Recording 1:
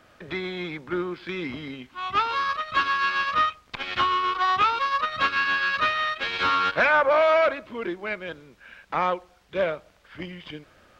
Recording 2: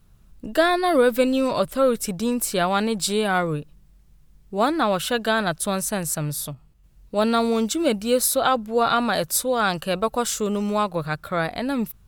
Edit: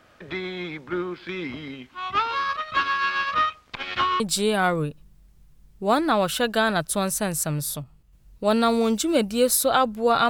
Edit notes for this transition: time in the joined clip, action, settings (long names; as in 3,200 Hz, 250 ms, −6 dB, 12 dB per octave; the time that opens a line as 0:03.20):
recording 1
0:04.20: continue with recording 2 from 0:02.91